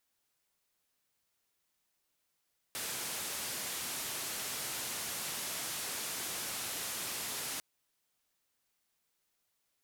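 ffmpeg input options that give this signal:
ffmpeg -f lavfi -i "anoisesrc=color=white:duration=4.85:sample_rate=44100:seed=1,highpass=frequency=87,lowpass=frequency=13000,volume=-31.9dB" out.wav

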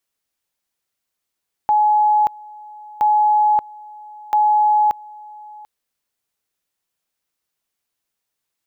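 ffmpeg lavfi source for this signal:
ffmpeg -f lavfi -i "aevalsrc='pow(10,(-11.5-23.5*gte(mod(t,1.32),0.58))/20)*sin(2*PI*845*t)':duration=3.96:sample_rate=44100" out.wav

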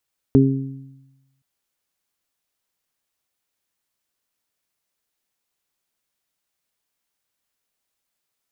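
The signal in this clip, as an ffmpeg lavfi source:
ffmpeg -f lavfi -i "aevalsrc='0.224*pow(10,-3*t/1.13)*sin(2*PI*135*t)+0.335*pow(10,-3*t/0.86)*sin(2*PI*270*t)+0.178*pow(10,-3*t/0.57)*sin(2*PI*405*t)':duration=1.07:sample_rate=44100" out.wav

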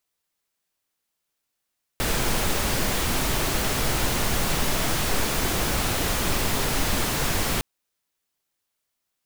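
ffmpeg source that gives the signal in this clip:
ffmpeg -f lavfi -i "anoisesrc=color=pink:amplitude=0.343:duration=5.61:sample_rate=44100:seed=1" out.wav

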